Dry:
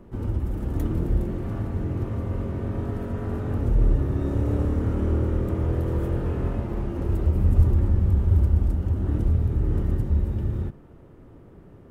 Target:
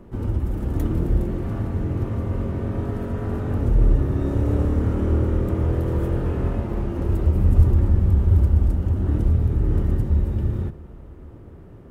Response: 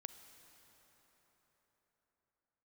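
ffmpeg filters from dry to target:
-filter_complex "[0:a]asplit=2[a][b];[1:a]atrim=start_sample=2205,asetrate=33075,aresample=44100[c];[b][c]afir=irnorm=-1:irlink=0,volume=-4.5dB[d];[a][d]amix=inputs=2:normalize=0"

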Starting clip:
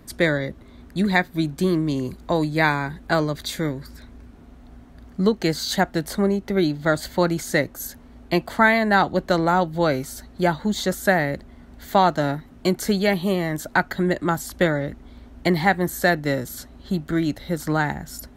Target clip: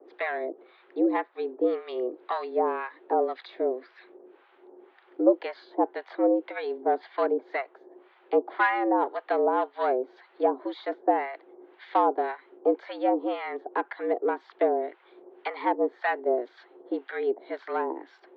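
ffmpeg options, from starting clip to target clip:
-filter_complex "[0:a]acrossover=split=600|1200[a][b][c];[b]aeval=exprs='0.282*(cos(1*acos(clip(val(0)/0.282,-1,1)))-cos(1*PI/2))+0.02*(cos(8*acos(clip(val(0)/0.282,-1,1)))-cos(8*PI/2))':c=same[d];[c]acompressor=threshold=-40dB:ratio=5[e];[a][d][e]amix=inputs=3:normalize=0,highpass=f=210:t=q:w=0.5412,highpass=f=210:t=q:w=1.307,lowpass=f=3.4k:t=q:w=0.5176,lowpass=f=3.4k:t=q:w=0.7071,lowpass=f=3.4k:t=q:w=1.932,afreqshift=120,acrossover=split=850[f][g];[f]aeval=exprs='val(0)*(1-1/2+1/2*cos(2*PI*1.9*n/s))':c=same[h];[g]aeval=exprs='val(0)*(1-1/2-1/2*cos(2*PI*1.9*n/s))':c=same[i];[h][i]amix=inputs=2:normalize=0,volume=1.5dB"

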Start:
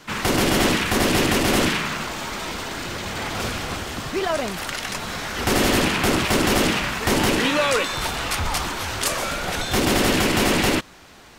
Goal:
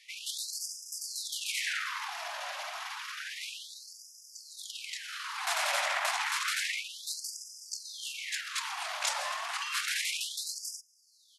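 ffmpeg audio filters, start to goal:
-af "asetrate=34006,aresample=44100,atempo=1.29684,afftfilt=real='re*gte(b*sr/1024,540*pow(4900/540,0.5+0.5*sin(2*PI*0.3*pts/sr)))':imag='im*gte(b*sr/1024,540*pow(4900/540,0.5+0.5*sin(2*PI*0.3*pts/sr)))':win_size=1024:overlap=0.75,volume=-7dB"

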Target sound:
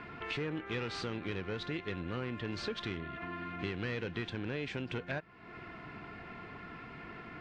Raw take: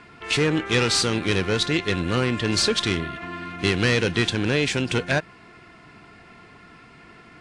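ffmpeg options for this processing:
-af "lowpass=2.8k,acompressor=threshold=-42dB:ratio=3,volume=1dB"

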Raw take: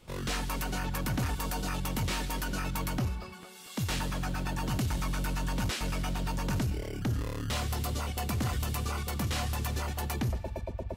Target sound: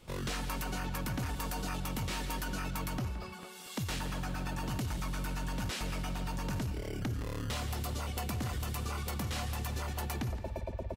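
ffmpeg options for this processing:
-filter_complex "[0:a]acompressor=threshold=-33dB:ratio=6,asplit=2[a][b];[b]adelay=170,highpass=300,lowpass=3.4k,asoftclip=type=hard:threshold=-35dB,volume=-9dB[c];[a][c]amix=inputs=2:normalize=0"

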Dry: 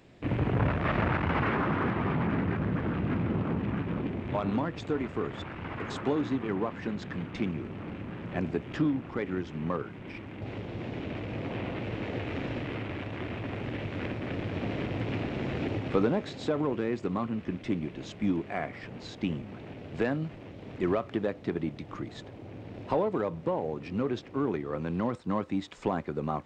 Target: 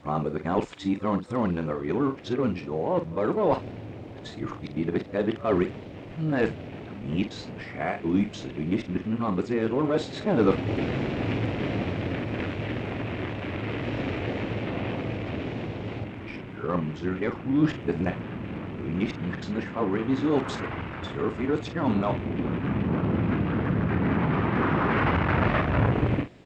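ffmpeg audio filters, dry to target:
-filter_complex "[0:a]areverse,asplit=2[a][b];[b]adelay=45,volume=-10dB[c];[a][c]amix=inputs=2:normalize=0,volume=4dB"

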